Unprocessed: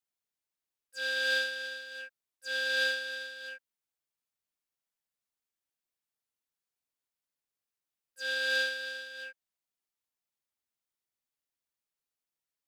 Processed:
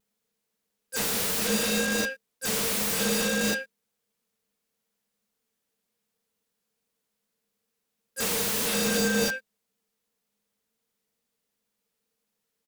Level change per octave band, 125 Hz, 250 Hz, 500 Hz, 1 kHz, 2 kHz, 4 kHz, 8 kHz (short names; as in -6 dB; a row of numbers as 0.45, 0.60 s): n/a, +30.5 dB, +11.0 dB, +18.0 dB, -0.5 dB, +4.5 dB, +21.0 dB